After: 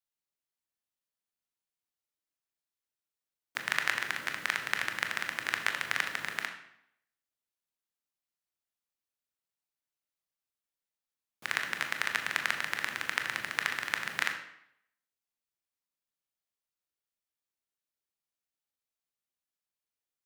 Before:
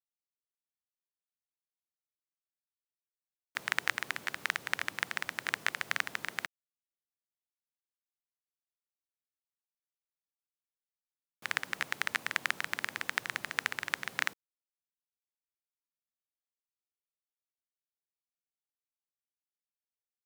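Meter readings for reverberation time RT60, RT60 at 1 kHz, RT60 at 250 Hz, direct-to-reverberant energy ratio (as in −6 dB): 0.75 s, 0.75 s, 0.70 s, 4.5 dB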